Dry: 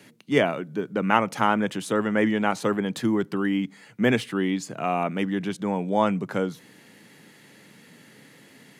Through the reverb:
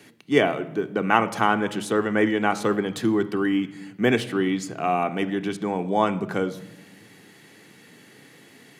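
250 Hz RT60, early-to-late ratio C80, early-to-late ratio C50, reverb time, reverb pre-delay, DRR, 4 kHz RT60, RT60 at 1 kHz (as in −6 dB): 1.7 s, 17.5 dB, 15.0 dB, 1.0 s, 3 ms, 8.0 dB, 0.75 s, 0.85 s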